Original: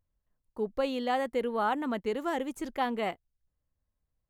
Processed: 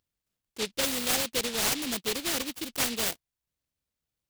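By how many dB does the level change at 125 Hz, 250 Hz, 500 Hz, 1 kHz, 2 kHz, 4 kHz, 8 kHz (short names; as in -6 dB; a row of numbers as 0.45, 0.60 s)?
n/a, -2.5 dB, -4.5 dB, -7.0 dB, +4.0 dB, +14.0 dB, +25.0 dB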